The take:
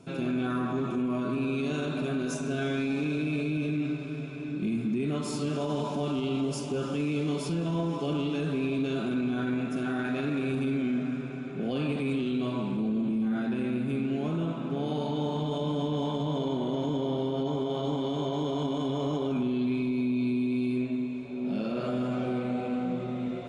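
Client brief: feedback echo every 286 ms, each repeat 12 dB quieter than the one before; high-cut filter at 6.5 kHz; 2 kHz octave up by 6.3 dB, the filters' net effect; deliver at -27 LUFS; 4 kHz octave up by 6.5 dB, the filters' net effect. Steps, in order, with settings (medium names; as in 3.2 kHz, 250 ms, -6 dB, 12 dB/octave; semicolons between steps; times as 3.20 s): low-pass 6.5 kHz; peaking EQ 2 kHz +7 dB; peaking EQ 4 kHz +6 dB; feedback delay 286 ms, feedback 25%, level -12 dB; trim +2 dB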